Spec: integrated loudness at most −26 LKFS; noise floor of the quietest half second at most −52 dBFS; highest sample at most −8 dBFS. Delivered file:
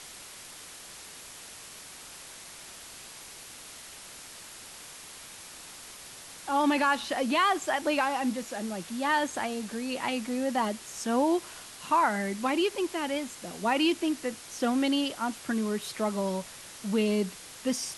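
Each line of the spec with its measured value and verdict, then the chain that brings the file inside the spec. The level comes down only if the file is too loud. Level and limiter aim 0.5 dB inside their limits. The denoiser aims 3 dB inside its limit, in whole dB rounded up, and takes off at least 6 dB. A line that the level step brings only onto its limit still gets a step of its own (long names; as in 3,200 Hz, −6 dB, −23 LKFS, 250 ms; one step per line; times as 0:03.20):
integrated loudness −29.0 LKFS: in spec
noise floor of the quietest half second −46 dBFS: out of spec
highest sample −13.5 dBFS: in spec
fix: broadband denoise 9 dB, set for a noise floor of −46 dBFS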